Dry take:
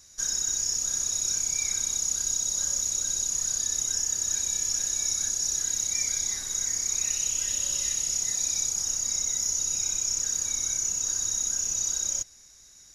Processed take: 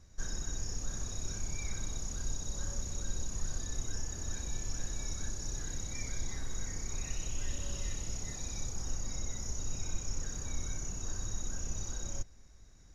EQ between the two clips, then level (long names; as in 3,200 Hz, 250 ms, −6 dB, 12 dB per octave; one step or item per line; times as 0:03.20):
spectral tilt −3 dB per octave
high-shelf EQ 3,500 Hz −9.5 dB
−1.5 dB